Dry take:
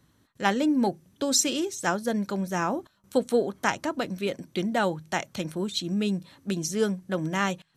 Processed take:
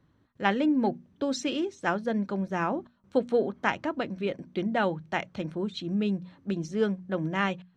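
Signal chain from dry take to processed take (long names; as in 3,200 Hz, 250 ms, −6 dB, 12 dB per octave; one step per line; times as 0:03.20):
head-to-tape spacing loss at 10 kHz 27 dB
mains-hum notches 60/120/180/240 Hz
dynamic equaliser 2,600 Hz, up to +7 dB, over −43 dBFS, Q 1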